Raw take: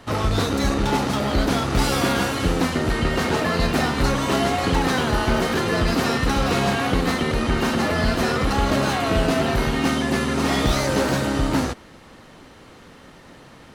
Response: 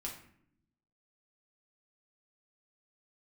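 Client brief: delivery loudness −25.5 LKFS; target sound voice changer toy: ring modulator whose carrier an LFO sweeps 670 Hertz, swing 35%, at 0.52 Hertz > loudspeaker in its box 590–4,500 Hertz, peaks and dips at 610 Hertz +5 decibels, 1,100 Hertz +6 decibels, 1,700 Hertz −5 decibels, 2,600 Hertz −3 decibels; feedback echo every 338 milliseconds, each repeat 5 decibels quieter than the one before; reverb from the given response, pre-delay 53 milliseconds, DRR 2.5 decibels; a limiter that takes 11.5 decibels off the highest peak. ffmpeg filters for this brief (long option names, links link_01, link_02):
-filter_complex "[0:a]alimiter=limit=-17.5dB:level=0:latency=1,aecho=1:1:338|676|1014|1352|1690|2028|2366:0.562|0.315|0.176|0.0988|0.0553|0.031|0.0173,asplit=2[link_01][link_02];[1:a]atrim=start_sample=2205,adelay=53[link_03];[link_02][link_03]afir=irnorm=-1:irlink=0,volume=-1.5dB[link_04];[link_01][link_04]amix=inputs=2:normalize=0,aeval=exprs='val(0)*sin(2*PI*670*n/s+670*0.35/0.52*sin(2*PI*0.52*n/s))':channel_layout=same,highpass=590,equalizer=frequency=610:width_type=q:width=4:gain=5,equalizer=frequency=1100:width_type=q:width=4:gain=6,equalizer=frequency=1700:width_type=q:width=4:gain=-5,equalizer=frequency=2600:width_type=q:width=4:gain=-3,lowpass=frequency=4500:width=0.5412,lowpass=frequency=4500:width=1.3066,volume=-1dB"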